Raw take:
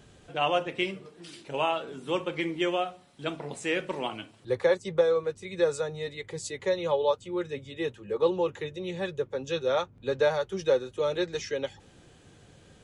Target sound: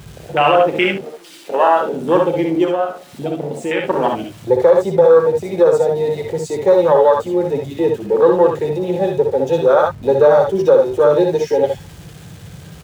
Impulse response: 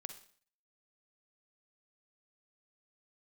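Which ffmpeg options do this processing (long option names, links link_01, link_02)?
-filter_complex "[0:a]aeval=exprs='val(0)+0.5*0.0133*sgn(val(0))':channel_layout=same,asettb=1/sr,asplit=3[link_01][link_02][link_03];[link_01]atrim=end=0.974[link_04];[link_02]atrim=start=0.97:end=1.81,asetpts=PTS-STARTPTS,afade=type=in:duration=0.004:curve=qsin,afade=type=out:start_time=0.836:duration=0.004:curve=qsin,equalizer=frequency=100:width_type=o:width=1.7:gain=-14[link_05];[link_03]atrim=start=1.806[link_06];[link_04][link_05]acrossfade=duration=0.004:curve1=hsin:curve2=qsin[link_07];[link_07][link_06]acrossfade=duration=0.004:curve1=qsin:curve2=hsin,asoftclip=type=tanh:threshold=-11.5dB,afwtdn=0.0316,asettb=1/sr,asplit=3[link_08][link_09][link_10];[link_08]atrim=end=2.644[link_11];[link_09]atrim=start=2.64:end=3.84,asetpts=PTS-STARTPTS,afade=type=in:duration=0.004:curve=qsin,afade=type=out:start_time=1.196:duration=0.004:curve=qsin,acompressor=threshold=-36dB:ratio=2[link_12];[link_10]atrim=start=3.836[link_13];[link_11][link_12]acrossfade=duration=0.004:curve1=hsin:curve2=qsin[link_14];[link_14][link_13]acrossfade=duration=0.004:curve1=qsin:curve2=hsin,lowshelf=frequency=170:gain=-10,aecho=1:1:61|74:0.531|0.398,alimiter=level_in=17dB:limit=-1dB:release=50:level=0:latency=1,volume=-1.5dB"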